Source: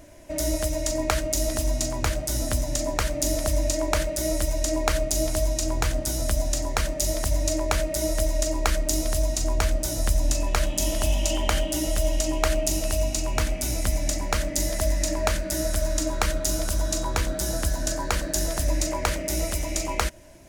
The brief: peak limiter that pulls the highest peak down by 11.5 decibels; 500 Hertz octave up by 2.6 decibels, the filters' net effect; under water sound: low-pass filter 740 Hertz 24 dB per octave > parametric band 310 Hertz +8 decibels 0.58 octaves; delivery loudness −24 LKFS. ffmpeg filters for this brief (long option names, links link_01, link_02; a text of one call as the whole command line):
ffmpeg -i in.wav -af "equalizer=frequency=500:width_type=o:gain=3.5,alimiter=limit=-15dB:level=0:latency=1,lowpass=frequency=740:width=0.5412,lowpass=frequency=740:width=1.3066,equalizer=frequency=310:width_type=o:width=0.58:gain=8,volume=2dB" out.wav